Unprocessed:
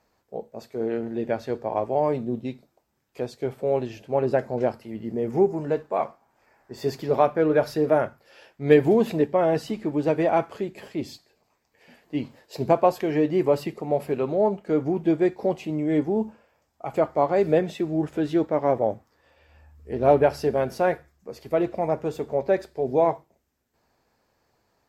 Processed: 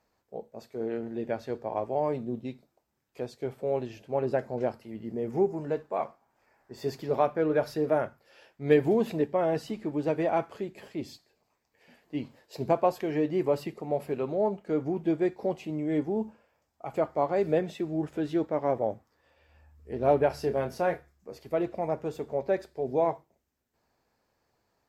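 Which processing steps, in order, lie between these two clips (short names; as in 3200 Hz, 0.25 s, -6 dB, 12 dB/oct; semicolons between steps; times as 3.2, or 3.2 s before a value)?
20.27–21.38 doubler 29 ms -8 dB; gain -5.5 dB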